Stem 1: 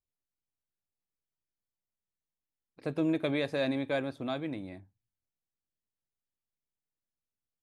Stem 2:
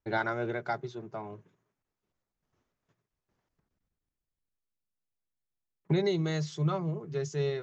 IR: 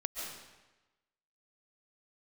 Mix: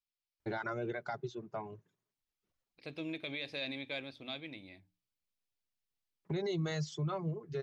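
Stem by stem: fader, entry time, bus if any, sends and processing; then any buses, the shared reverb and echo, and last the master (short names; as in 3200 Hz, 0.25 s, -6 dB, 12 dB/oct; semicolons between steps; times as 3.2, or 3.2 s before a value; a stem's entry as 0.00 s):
-12.0 dB, 0.00 s, no send, band shelf 3400 Hz +14 dB; notches 60/120/180/240/300 Hz
-1.0 dB, 0.40 s, no send, reverb removal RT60 0.87 s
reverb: off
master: limiter -28.5 dBFS, peak gain reduction 11 dB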